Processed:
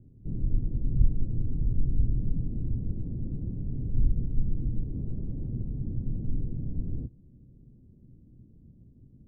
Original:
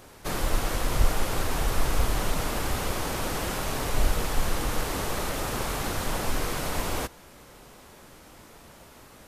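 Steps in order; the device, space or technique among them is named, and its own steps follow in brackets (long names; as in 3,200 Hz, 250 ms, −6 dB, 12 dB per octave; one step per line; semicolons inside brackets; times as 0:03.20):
0:04.95–0:05.55: parametric band 1,500 Hz +4.5 dB 2.1 octaves
the neighbour's flat through the wall (low-pass filter 260 Hz 24 dB per octave; parametric band 120 Hz +7 dB 0.52 octaves)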